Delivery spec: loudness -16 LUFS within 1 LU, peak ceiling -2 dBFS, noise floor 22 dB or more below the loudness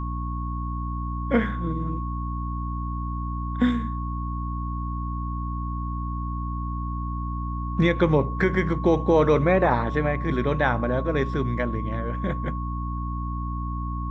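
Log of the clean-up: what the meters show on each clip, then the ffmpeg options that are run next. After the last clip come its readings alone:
hum 60 Hz; harmonics up to 300 Hz; hum level -27 dBFS; steady tone 1100 Hz; tone level -34 dBFS; loudness -26.0 LUFS; peak -8.0 dBFS; loudness target -16.0 LUFS
-> -af "bandreject=f=60:t=h:w=6,bandreject=f=120:t=h:w=6,bandreject=f=180:t=h:w=6,bandreject=f=240:t=h:w=6,bandreject=f=300:t=h:w=6"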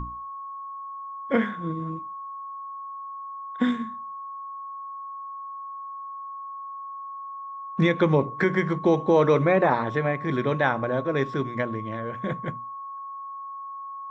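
hum none; steady tone 1100 Hz; tone level -34 dBFS
-> -af "bandreject=f=1.1k:w=30"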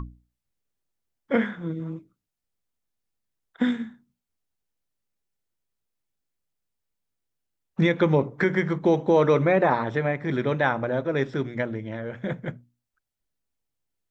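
steady tone none; loudness -24.5 LUFS; peak -8.5 dBFS; loudness target -16.0 LUFS
-> -af "volume=8.5dB,alimiter=limit=-2dB:level=0:latency=1"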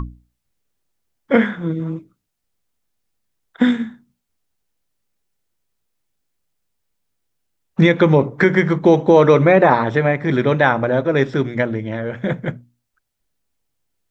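loudness -16.5 LUFS; peak -2.0 dBFS; noise floor -76 dBFS

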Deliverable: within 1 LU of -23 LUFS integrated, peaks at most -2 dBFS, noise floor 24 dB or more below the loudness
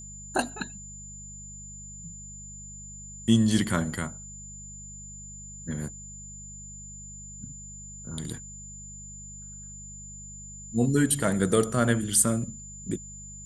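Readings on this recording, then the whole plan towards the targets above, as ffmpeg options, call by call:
hum 50 Hz; harmonics up to 200 Hz; hum level -44 dBFS; steady tone 7100 Hz; tone level -42 dBFS; loudness -27.0 LUFS; peak -7.0 dBFS; loudness target -23.0 LUFS
-> -af "bandreject=f=50:t=h:w=4,bandreject=f=100:t=h:w=4,bandreject=f=150:t=h:w=4,bandreject=f=200:t=h:w=4"
-af "bandreject=f=7.1k:w=30"
-af "volume=4dB"

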